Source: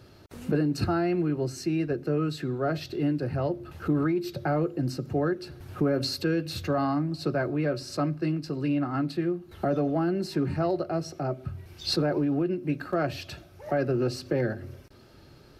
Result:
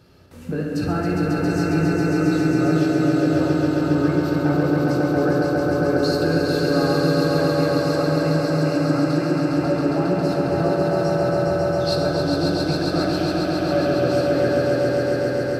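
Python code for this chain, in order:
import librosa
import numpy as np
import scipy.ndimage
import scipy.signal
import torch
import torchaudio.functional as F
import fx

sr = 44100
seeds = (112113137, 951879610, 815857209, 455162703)

p1 = x + fx.echo_swell(x, sr, ms=136, loudest=5, wet_db=-4, dry=0)
p2 = fx.rev_fdn(p1, sr, rt60_s=3.2, lf_ratio=1.0, hf_ratio=0.35, size_ms=35.0, drr_db=-1.0)
y = p2 * 10.0 ** (-1.5 / 20.0)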